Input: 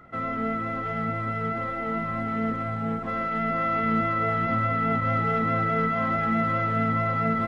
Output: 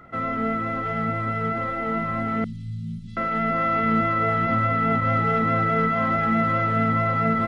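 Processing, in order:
0:02.44–0:03.17: Chebyshev band-stop filter 170–3,900 Hz, order 3
level +3 dB

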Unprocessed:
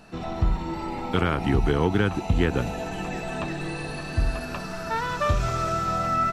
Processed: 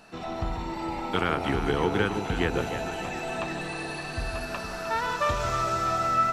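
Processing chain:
low-shelf EQ 270 Hz −10.5 dB
on a send: delay that swaps between a low-pass and a high-pass 154 ms, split 890 Hz, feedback 69%, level −5.5 dB

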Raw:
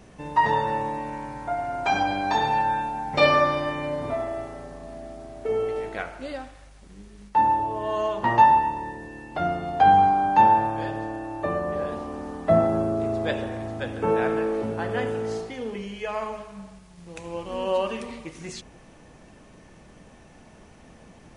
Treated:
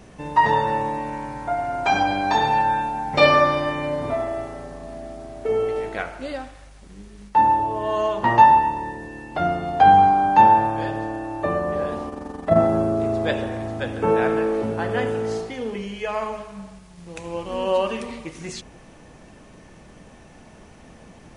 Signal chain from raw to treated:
0:12.09–0:12.56: amplitude modulation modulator 23 Hz, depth 45%
level +3.5 dB

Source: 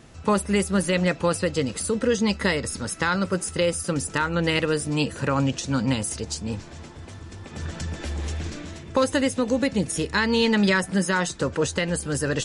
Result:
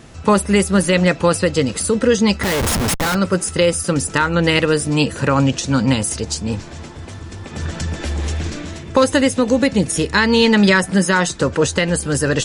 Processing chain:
0:02.43–0:03.15: comparator with hysteresis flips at −33 dBFS
level +7.5 dB

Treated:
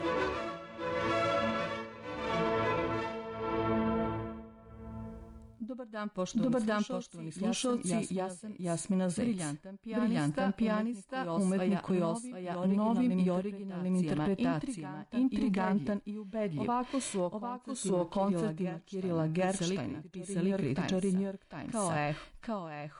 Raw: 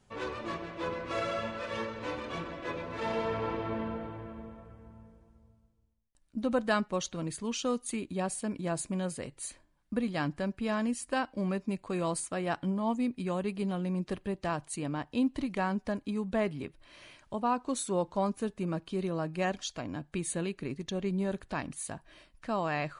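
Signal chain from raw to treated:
on a send: backwards echo 748 ms −5.5 dB
on the sum: harmonic and percussive parts rebalanced percussive −10 dB
harmonic generator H 5 −30 dB, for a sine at −17 dBFS
in parallel at +0.5 dB: downward compressor, threshold −43 dBFS, peak gain reduction 18 dB
on the sum: amplitude tremolo 0.77 Hz, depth 87%
brickwall limiter −28 dBFS, peak gain reduction 11 dB
level +5.5 dB

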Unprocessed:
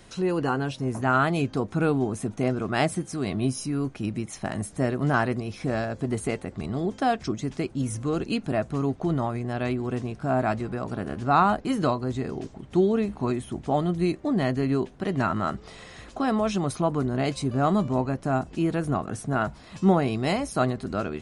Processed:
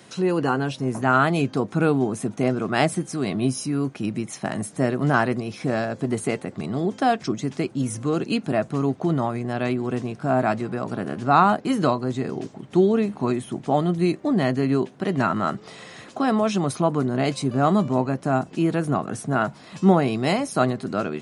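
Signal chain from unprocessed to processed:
high-pass filter 120 Hz 24 dB per octave
level +3.5 dB

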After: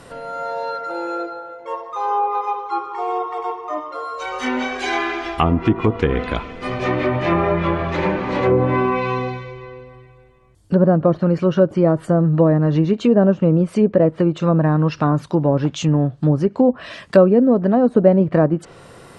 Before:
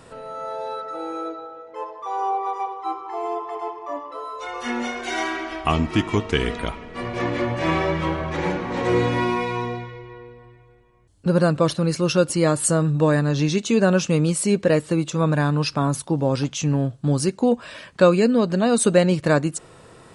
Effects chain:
speed change +5%
treble cut that deepens with the level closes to 800 Hz, closed at −15 dBFS
level +4.5 dB

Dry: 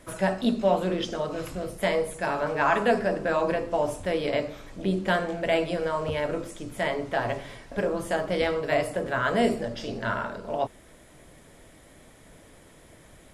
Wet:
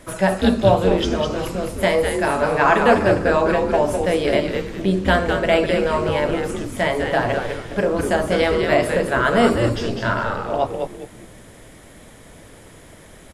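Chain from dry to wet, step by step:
echo with shifted repeats 203 ms, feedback 32%, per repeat −120 Hz, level −5 dB
level +7 dB

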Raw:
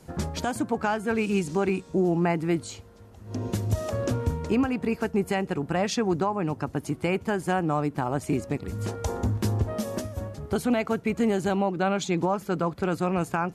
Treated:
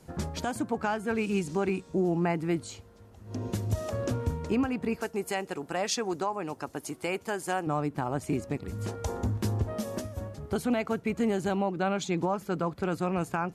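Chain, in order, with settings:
0:05.01–0:07.67: bass and treble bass −12 dB, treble +7 dB
level −3.5 dB

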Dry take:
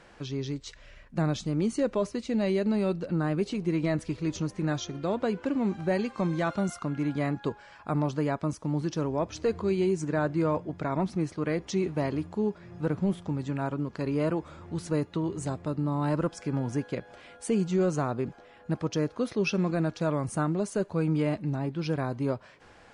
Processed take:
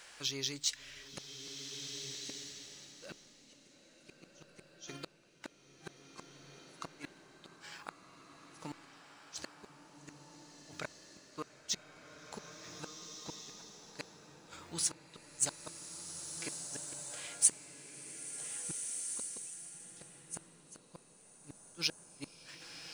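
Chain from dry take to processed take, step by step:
mains-hum notches 50/100/150/200/250/300 Hz
gate with flip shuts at −23 dBFS, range −41 dB
in parallel at −11 dB: slack as between gear wheels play −43 dBFS
on the sum: first-order pre-emphasis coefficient 0.97
slow-attack reverb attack 1,660 ms, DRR 4.5 dB
level +12.5 dB

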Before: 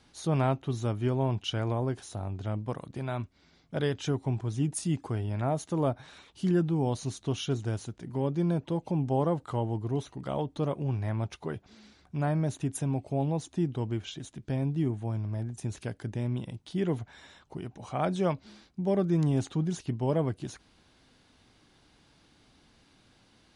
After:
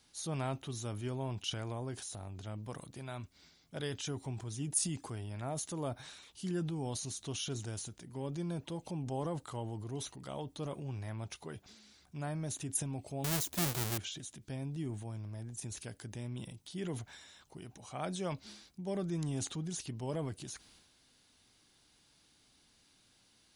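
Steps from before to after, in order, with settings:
0:13.24–0:13.98: each half-wave held at its own peak
first-order pre-emphasis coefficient 0.8
transient designer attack 0 dB, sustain +7 dB
level +3 dB

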